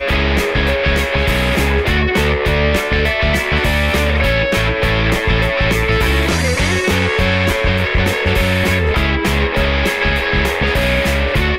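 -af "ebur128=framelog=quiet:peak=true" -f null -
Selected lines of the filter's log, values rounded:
Integrated loudness:
  I:         -14.8 LUFS
  Threshold: -24.8 LUFS
Loudness range:
  LRA:         0.3 LU
  Threshold: -34.8 LUFS
  LRA low:   -15.0 LUFS
  LRA high:  -14.6 LUFS
True peak:
  Peak:       -4.9 dBFS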